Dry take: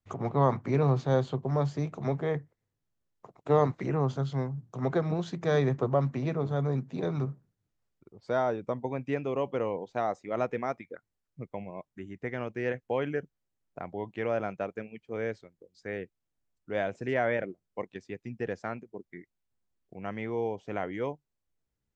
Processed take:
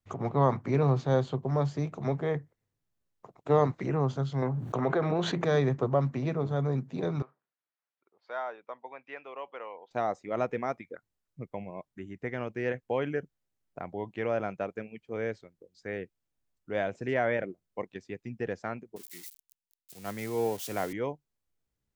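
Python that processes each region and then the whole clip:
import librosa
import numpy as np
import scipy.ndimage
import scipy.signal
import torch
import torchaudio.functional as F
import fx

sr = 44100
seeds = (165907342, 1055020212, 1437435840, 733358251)

y = fx.chain(x, sr, fx.bass_treble(bass_db=-10, treble_db=-10),
    fx.notch(hz=5100.0, q=7.7),
    fx.env_flatten(amount_pct=70), at=(4.42, 5.45))
y = fx.chain(y, sr, fx.highpass(hz=970.0, slope=12),
    fx.air_absorb(metres=260.0), at=(7.22, 9.91))
y = fx.chain(y, sr, fx.crossing_spikes(level_db=-32.0),
    fx.band_widen(depth_pct=70), at=(18.96, 20.93))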